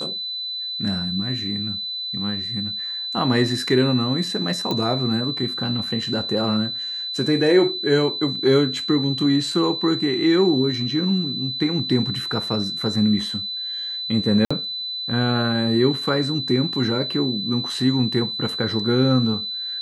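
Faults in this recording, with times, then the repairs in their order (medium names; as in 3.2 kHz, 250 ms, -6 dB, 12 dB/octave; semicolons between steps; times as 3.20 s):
whine 4 kHz -26 dBFS
4.71 s: pop -11 dBFS
14.45–14.51 s: dropout 55 ms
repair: de-click; band-stop 4 kHz, Q 30; interpolate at 14.45 s, 55 ms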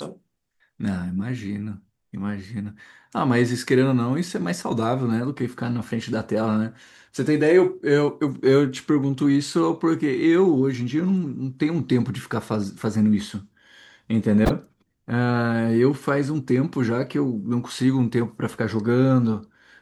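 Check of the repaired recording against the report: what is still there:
nothing left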